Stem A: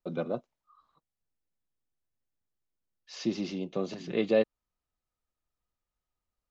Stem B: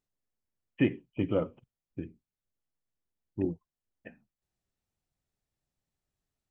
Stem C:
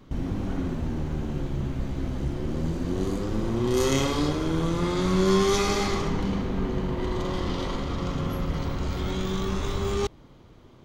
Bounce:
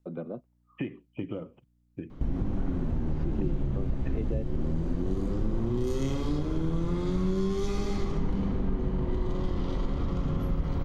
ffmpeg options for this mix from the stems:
ffmpeg -i stem1.wav -i stem2.wav -i stem3.wav -filter_complex "[0:a]lowpass=2400,volume=-0.5dB[link_01];[1:a]acompressor=threshold=-31dB:ratio=4,aeval=exprs='val(0)+0.000447*(sin(2*PI*60*n/s)+sin(2*PI*2*60*n/s)/2+sin(2*PI*3*60*n/s)/3+sin(2*PI*4*60*n/s)/4+sin(2*PI*5*60*n/s)/5)':channel_layout=same,volume=1dB[link_02];[2:a]lowshelf=frequency=97:gain=8.5,adelay=2100,volume=2.5dB[link_03];[link_01][link_03]amix=inputs=2:normalize=0,highshelf=frequency=2500:gain=-12,acompressor=threshold=-25dB:ratio=3,volume=0dB[link_04];[link_02][link_04]amix=inputs=2:normalize=0,equalizer=frequency=84:width=1.8:gain=-4,acrossover=split=390|3000[link_05][link_06][link_07];[link_06]acompressor=threshold=-40dB:ratio=6[link_08];[link_05][link_08][link_07]amix=inputs=3:normalize=0" out.wav

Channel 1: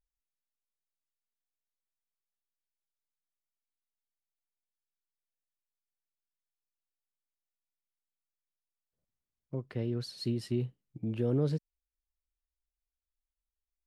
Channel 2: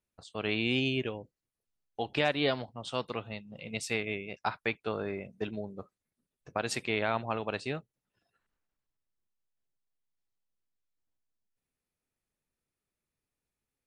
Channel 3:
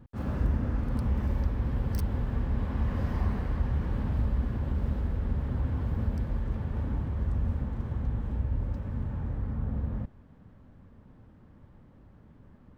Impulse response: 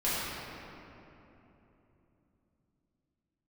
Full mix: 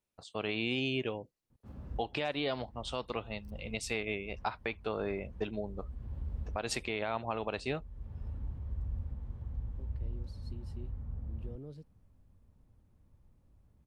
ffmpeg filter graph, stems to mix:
-filter_complex "[0:a]adelay=250,volume=-18dB[link_01];[1:a]equalizer=frequency=1200:width=0.37:gain=4.5,volume=-1.5dB,asplit=2[link_02][link_03];[2:a]asubboost=boost=2.5:cutoff=110,acrossover=split=210[link_04][link_05];[link_05]acompressor=threshold=-40dB:ratio=2.5[link_06];[link_04][link_06]amix=inputs=2:normalize=0,adelay=1500,volume=-15dB[link_07];[link_03]apad=whole_len=629435[link_08];[link_07][link_08]sidechaincompress=threshold=-47dB:ratio=4:attack=35:release=351[link_09];[link_01][link_02][link_09]amix=inputs=3:normalize=0,equalizer=frequency=1600:width=1.6:gain=-5,alimiter=limit=-21.5dB:level=0:latency=1:release=128"

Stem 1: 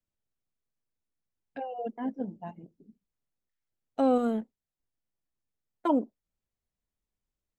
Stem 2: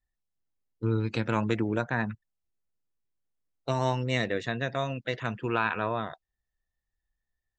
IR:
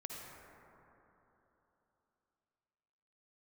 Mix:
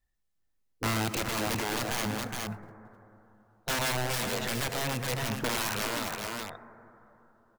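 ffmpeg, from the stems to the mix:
-filter_complex "[0:a]aeval=exprs='0.0794*(abs(mod(val(0)/0.0794+3,4)-2)-1)':channel_layout=same,acrusher=bits=3:mode=log:mix=0:aa=0.000001,adelay=50,volume=-9.5dB[link_01];[1:a]aeval=exprs='(mod(18.8*val(0)+1,2)-1)/18.8':channel_layout=same,volume=2dB,asplit=3[link_02][link_03][link_04];[link_03]volume=-5.5dB[link_05];[link_04]volume=-5.5dB[link_06];[2:a]atrim=start_sample=2205[link_07];[link_05][link_07]afir=irnorm=-1:irlink=0[link_08];[link_06]aecho=0:1:417:1[link_09];[link_01][link_02][link_08][link_09]amix=inputs=4:normalize=0,alimiter=limit=-23dB:level=0:latency=1:release=49"

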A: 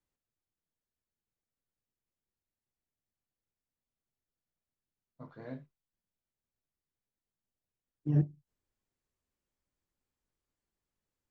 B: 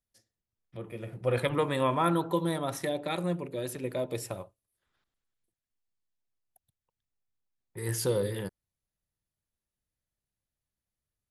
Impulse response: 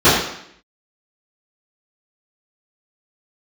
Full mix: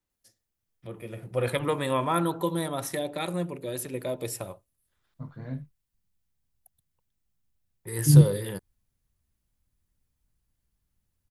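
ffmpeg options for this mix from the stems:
-filter_complex "[0:a]asubboost=boost=6:cutoff=170,volume=2.5dB[link_01];[1:a]highshelf=frequency=8200:gain=9,adelay=100,volume=0.5dB[link_02];[link_01][link_02]amix=inputs=2:normalize=0"

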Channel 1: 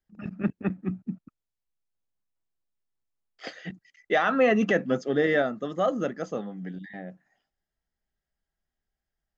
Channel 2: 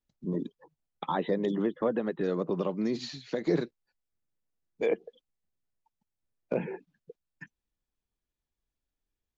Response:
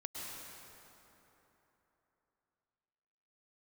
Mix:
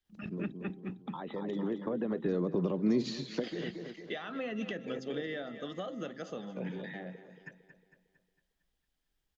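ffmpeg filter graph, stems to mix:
-filter_complex "[0:a]equalizer=frequency=3400:width=1.3:gain=11.5,bandreject=frequency=131.2:width_type=h:width=4,bandreject=frequency=262.4:width_type=h:width=4,bandreject=frequency=393.6:width_type=h:width=4,bandreject=frequency=524.8:width_type=h:width=4,bandreject=frequency=656:width_type=h:width=4,bandreject=frequency=787.2:width_type=h:width=4,acompressor=threshold=-36dB:ratio=2,volume=-3.5dB,asplit=3[link_01][link_02][link_03];[link_02]volume=-15.5dB[link_04];[1:a]alimiter=limit=-21.5dB:level=0:latency=1:release=30,adelay=50,volume=3dB,asplit=2[link_05][link_06];[link_06]volume=-16.5dB[link_07];[link_03]apad=whole_len=415572[link_08];[link_05][link_08]sidechaincompress=threshold=-47dB:ratio=5:attack=12:release=1330[link_09];[link_04][link_07]amix=inputs=2:normalize=0,aecho=0:1:227|454|681|908|1135|1362|1589:1|0.5|0.25|0.125|0.0625|0.0312|0.0156[link_10];[link_01][link_09][link_10]amix=inputs=3:normalize=0,acrossover=split=410[link_11][link_12];[link_12]acompressor=threshold=-39dB:ratio=6[link_13];[link_11][link_13]amix=inputs=2:normalize=0"

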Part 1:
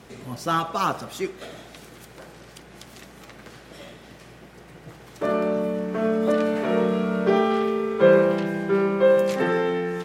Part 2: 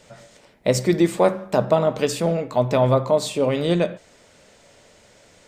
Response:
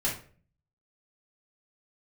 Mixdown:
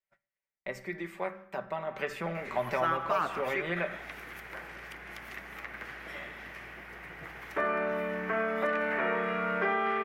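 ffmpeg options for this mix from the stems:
-filter_complex "[0:a]adelay=2350,volume=1dB,asplit=2[link_01][link_02];[link_02]volume=-17dB[link_03];[1:a]agate=range=-32dB:threshold=-39dB:ratio=16:detection=peak,aecho=1:1:5.2:0.56,volume=-6dB,afade=type=in:start_time=1.85:duration=0.25:silence=0.334965,asplit=2[link_04][link_05];[link_05]volume=-24dB[link_06];[2:a]atrim=start_sample=2205[link_07];[link_06][link_07]afir=irnorm=-1:irlink=0[link_08];[link_03]aecho=0:1:155:1[link_09];[link_01][link_04][link_08][link_09]amix=inputs=4:normalize=0,equalizer=frequency=125:width_type=o:width=1:gain=-10,equalizer=frequency=250:width_type=o:width=1:gain=-6,equalizer=frequency=500:width_type=o:width=1:gain=-5,equalizer=frequency=2000:width_type=o:width=1:gain=11,equalizer=frequency=4000:width_type=o:width=1:gain=-7,equalizer=frequency=8000:width_type=o:width=1:gain=-11,acrossover=split=580|2300[link_10][link_11][link_12];[link_10]acompressor=threshold=-36dB:ratio=4[link_13];[link_11]acompressor=threshold=-29dB:ratio=4[link_14];[link_12]acompressor=threshold=-49dB:ratio=4[link_15];[link_13][link_14][link_15]amix=inputs=3:normalize=0"

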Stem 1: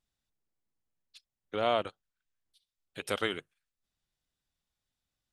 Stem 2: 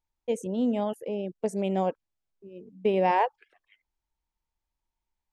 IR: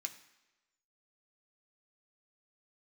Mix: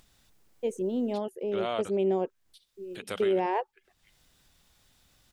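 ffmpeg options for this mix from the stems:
-filter_complex "[0:a]acompressor=mode=upward:threshold=-40dB:ratio=2.5,volume=-3dB[link_01];[1:a]equalizer=frequency=380:width=5.7:gain=12.5,adelay=350,volume=-4.5dB[link_02];[link_01][link_02]amix=inputs=2:normalize=0,alimiter=limit=-18.5dB:level=0:latency=1"

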